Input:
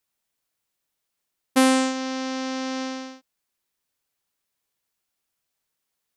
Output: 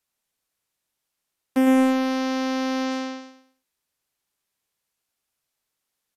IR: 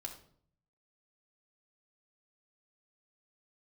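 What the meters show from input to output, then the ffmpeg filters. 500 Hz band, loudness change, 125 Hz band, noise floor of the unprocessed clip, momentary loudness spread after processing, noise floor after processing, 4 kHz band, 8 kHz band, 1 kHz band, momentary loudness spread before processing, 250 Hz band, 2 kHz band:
+2.0 dB, +1.5 dB, n/a, -81 dBFS, 13 LU, -82 dBFS, -3.5 dB, -8.5 dB, -0.5 dB, 14 LU, +3.5 dB, -1.0 dB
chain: -filter_complex "[0:a]acrossover=split=370[a][b];[b]volume=21.5dB,asoftclip=hard,volume=-21.5dB[c];[a][c]amix=inputs=2:normalize=0,aresample=32000,aresample=44100,aecho=1:1:107|214|321|428:0.398|0.155|0.0606|0.0236"

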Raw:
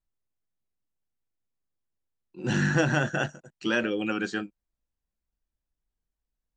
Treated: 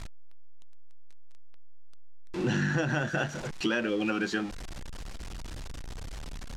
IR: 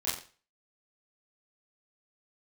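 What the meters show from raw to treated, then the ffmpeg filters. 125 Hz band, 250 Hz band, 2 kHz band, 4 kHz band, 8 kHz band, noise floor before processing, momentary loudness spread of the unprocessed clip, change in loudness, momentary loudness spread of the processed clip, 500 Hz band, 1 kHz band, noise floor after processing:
-2.5 dB, -1.5 dB, -3.0 dB, -1.0 dB, -1.5 dB, under -85 dBFS, 11 LU, -2.5 dB, 16 LU, -2.0 dB, -2.5 dB, -39 dBFS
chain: -af "aeval=exprs='val(0)+0.5*0.0158*sgn(val(0))':c=same,lowpass=6.5k,acompressor=threshold=-31dB:ratio=5,volume=5dB"

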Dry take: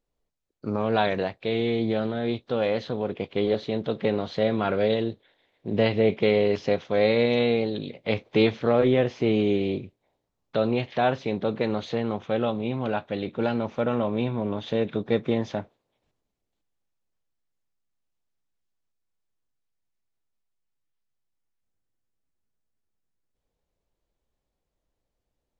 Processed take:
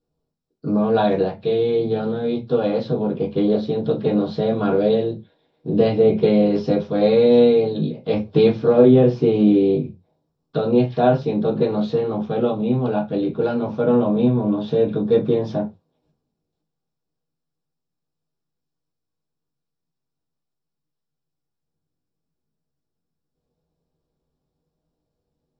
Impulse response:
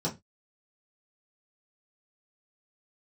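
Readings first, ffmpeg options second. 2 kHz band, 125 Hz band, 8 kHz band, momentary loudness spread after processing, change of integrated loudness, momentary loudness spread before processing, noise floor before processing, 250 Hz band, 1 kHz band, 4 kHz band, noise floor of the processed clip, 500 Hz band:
-4.5 dB, +6.5 dB, n/a, 9 LU, +6.5 dB, 8 LU, -82 dBFS, +8.0 dB, +3.5 dB, -1.0 dB, -80 dBFS, +7.0 dB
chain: -filter_complex "[1:a]atrim=start_sample=2205,asetrate=42336,aresample=44100[a];[0:a][a]afir=irnorm=-1:irlink=0,volume=-5.5dB"

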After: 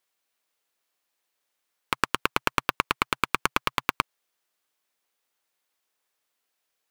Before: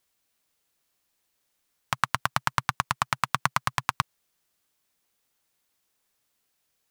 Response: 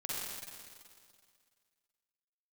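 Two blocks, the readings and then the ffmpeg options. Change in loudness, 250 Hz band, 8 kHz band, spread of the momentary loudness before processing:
+1.0 dB, +5.5 dB, -1.5 dB, 5 LU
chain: -af "aeval=exprs='0.841*(cos(1*acos(clip(val(0)/0.841,-1,1)))-cos(1*PI/2))+0.299*(cos(6*acos(clip(val(0)/0.841,-1,1)))-cos(6*PI/2))':c=same,bass=f=250:g=-14,treble=f=4k:g=-4,volume=-1dB"

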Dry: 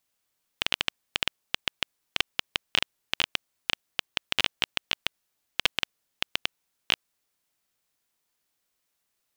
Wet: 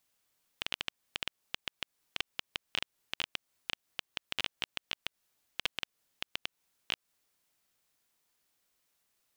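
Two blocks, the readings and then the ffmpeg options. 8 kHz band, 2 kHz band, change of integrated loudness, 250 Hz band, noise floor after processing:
-9.5 dB, -9.5 dB, -9.5 dB, -9.5 dB, -85 dBFS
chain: -af "alimiter=limit=-15dB:level=0:latency=1:release=182,volume=1dB"

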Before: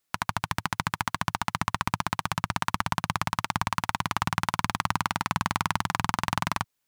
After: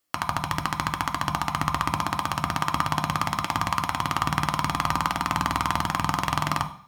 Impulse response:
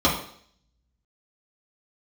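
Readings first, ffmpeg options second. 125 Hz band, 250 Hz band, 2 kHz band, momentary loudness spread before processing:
+2.5 dB, +3.0 dB, +1.0 dB, 2 LU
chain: -filter_complex "[0:a]asplit=2[a][b];[1:a]atrim=start_sample=2205,highshelf=f=6k:g=9.5[c];[b][c]afir=irnorm=-1:irlink=0,volume=-21.5dB[d];[a][d]amix=inputs=2:normalize=0"

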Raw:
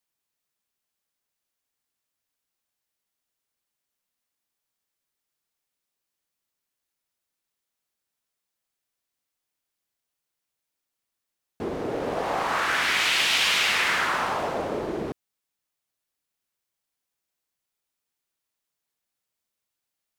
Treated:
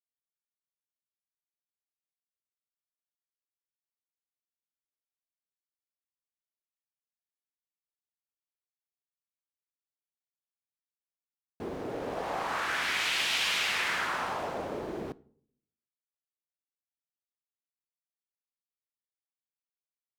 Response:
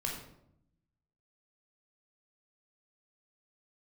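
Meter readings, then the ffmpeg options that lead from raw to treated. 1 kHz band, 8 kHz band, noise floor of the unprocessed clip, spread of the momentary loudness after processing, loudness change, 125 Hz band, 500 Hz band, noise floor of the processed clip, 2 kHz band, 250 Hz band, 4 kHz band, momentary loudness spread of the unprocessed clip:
-7.0 dB, -7.0 dB, -84 dBFS, 14 LU, -7.0 dB, -6.5 dB, -7.0 dB, under -85 dBFS, -7.0 dB, -7.0 dB, -7.0 dB, 13 LU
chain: -filter_complex "[0:a]acrusher=bits=9:mix=0:aa=0.000001,asplit=2[a][b];[1:a]atrim=start_sample=2205,asetrate=66150,aresample=44100[c];[b][c]afir=irnorm=-1:irlink=0,volume=-17dB[d];[a][d]amix=inputs=2:normalize=0,volume=-7.5dB"

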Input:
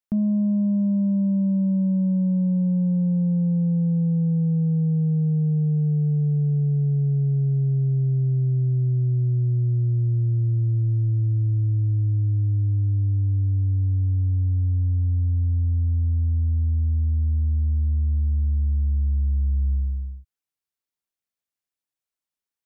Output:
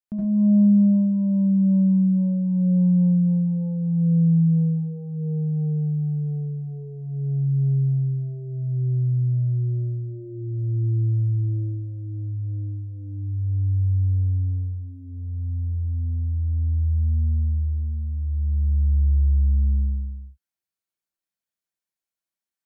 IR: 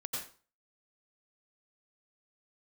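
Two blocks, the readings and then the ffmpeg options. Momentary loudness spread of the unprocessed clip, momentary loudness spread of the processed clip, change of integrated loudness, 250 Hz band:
2 LU, 13 LU, -0.5 dB, +2.0 dB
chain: -filter_complex "[1:a]atrim=start_sample=2205,afade=t=out:st=0.22:d=0.01,atrim=end_sample=10143,asetrate=57330,aresample=44100[a];[0:a][a]afir=irnorm=-1:irlink=0"

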